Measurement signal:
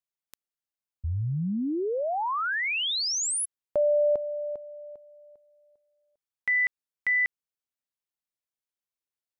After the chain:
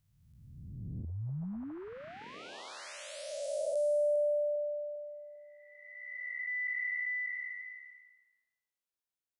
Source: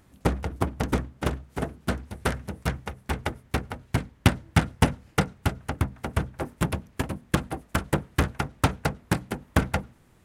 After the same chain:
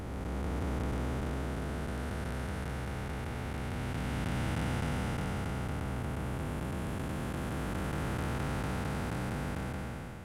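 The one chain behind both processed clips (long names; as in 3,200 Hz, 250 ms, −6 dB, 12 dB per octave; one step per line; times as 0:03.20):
spectrum smeared in time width 940 ms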